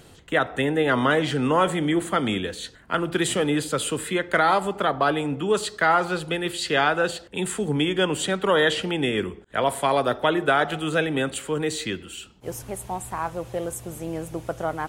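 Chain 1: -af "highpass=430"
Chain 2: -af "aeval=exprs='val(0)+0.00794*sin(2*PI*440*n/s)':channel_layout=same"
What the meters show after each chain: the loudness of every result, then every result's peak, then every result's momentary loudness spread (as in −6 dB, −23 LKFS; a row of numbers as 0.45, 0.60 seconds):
−25.5, −24.0 LKFS; −7.5, −7.5 dBFS; 13, 11 LU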